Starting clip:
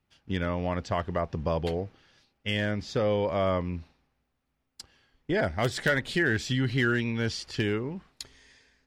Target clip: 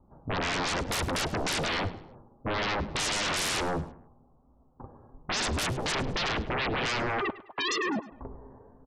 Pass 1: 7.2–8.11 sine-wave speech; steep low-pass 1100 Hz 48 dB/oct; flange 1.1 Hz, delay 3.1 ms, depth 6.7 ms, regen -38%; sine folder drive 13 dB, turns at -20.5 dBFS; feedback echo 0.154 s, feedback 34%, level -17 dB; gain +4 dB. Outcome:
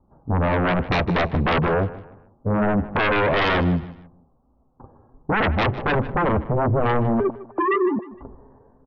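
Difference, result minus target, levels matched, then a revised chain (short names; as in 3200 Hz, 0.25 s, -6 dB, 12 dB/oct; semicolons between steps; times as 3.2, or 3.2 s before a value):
sine folder: distortion -30 dB; echo 50 ms late
7.2–8.11 sine-wave speech; steep low-pass 1100 Hz 48 dB/oct; flange 1.1 Hz, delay 3.1 ms, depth 6.7 ms, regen -38%; sine folder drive 13 dB, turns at -30.5 dBFS; feedback echo 0.104 s, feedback 34%, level -17 dB; gain +4 dB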